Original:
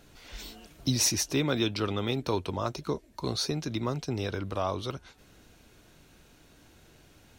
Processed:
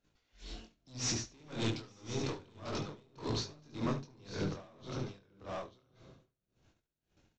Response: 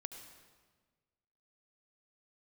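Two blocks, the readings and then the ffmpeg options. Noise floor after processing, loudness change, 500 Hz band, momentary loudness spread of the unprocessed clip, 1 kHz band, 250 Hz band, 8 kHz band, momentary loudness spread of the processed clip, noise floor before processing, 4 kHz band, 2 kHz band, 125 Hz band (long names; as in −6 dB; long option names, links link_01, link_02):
below −85 dBFS, −9.5 dB, −9.5 dB, 18 LU, −9.5 dB, −8.0 dB, −10.0 dB, 14 LU, −59 dBFS, −9.5 dB, −8.5 dB, −7.5 dB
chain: -filter_complex "[0:a]agate=range=-24dB:threshold=-54dB:ratio=16:detection=peak,flanger=delay=19:depth=7.7:speed=0.31,aresample=16000,asoftclip=type=hard:threshold=-32.5dB,aresample=44100,aecho=1:1:893:0.501,asplit=2[link_01][link_02];[1:a]atrim=start_sample=2205,lowshelf=frequency=440:gain=8.5,adelay=71[link_03];[link_02][link_03]afir=irnorm=-1:irlink=0,volume=-5dB[link_04];[link_01][link_04]amix=inputs=2:normalize=0,aeval=exprs='val(0)*pow(10,-28*(0.5-0.5*cos(2*PI*1.8*n/s))/20)':channel_layout=same,volume=1.5dB"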